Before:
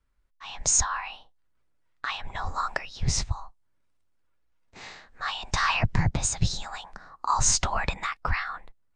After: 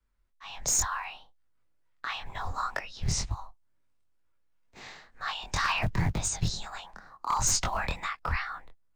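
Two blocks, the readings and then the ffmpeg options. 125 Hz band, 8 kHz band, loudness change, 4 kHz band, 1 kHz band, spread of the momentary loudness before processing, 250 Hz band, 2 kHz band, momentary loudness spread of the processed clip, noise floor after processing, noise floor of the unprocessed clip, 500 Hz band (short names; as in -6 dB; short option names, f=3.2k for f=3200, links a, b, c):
-3.5 dB, -3.5 dB, -3.5 dB, -3.0 dB, -3.0 dB, 20 LU, -3.0 dB, -3.0 dB, 19 LU, -68 dBFS, -68 dBFS, -2.5 dB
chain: -filter_complex "[0:a]acrossover=split=170|630|1500[a][b][c][d];[b]acrusher=bits=3:mode=log:mix=0:aa=0.000001[e];[a][e][c][d]amix=inputs=4:normalize=0,flanger=delay=19:depth=6.5:speed=2.1,aeval=exprs='clip(val(0),-1,0.0794)':c=same"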